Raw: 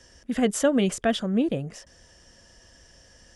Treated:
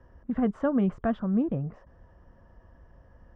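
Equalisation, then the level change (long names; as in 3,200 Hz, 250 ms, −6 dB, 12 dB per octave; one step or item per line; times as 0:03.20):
dynamic equaliser 500 Hz, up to −5 dB, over −34 dBFS, Q 0.85
low-pass with resonance 1,100 Hz, resonance Q 2.5
low-shelf EQ 250 Hz +11 dB
−6.0 dB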